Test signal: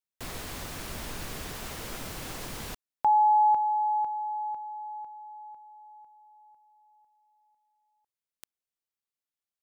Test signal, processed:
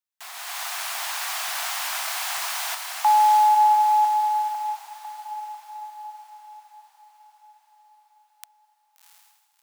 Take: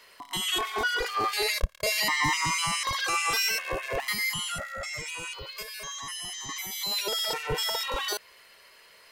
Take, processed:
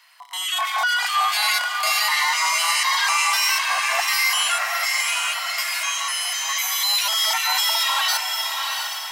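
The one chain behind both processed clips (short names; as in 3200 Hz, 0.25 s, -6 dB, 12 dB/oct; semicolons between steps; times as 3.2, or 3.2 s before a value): steep high-pass 690 Hz 72 dB/oct; limiter -24 dBFS; AGC gain up to 11 dB; diffused feedback echo 0.712 s, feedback 47%, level -4 dB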